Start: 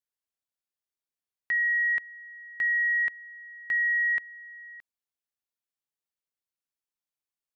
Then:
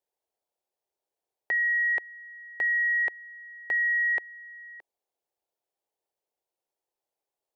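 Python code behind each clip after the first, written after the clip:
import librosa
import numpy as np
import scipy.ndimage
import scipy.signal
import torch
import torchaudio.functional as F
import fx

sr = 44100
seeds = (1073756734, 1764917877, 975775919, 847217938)

y = fx.band_shelf(x, sr, hz=560.0, db=15.0, octaves=1.7)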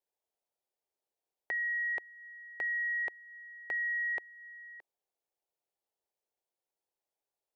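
y = fx.dynamic_eq(x, sr, hz=1800.0, q=2.4, threshold_db=-41.0, ratio=4.0, max_db=-4)
y = F.gain(torch.from_numpy(y), -4.5).numpy()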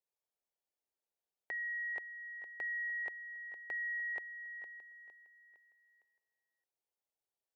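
y = fx.echo_feedback(x, sr, ms=459, feedback_pct=41, wet_db=-11.5)
y = F.gain(torch.from_numpy(y), -6.0).numpy()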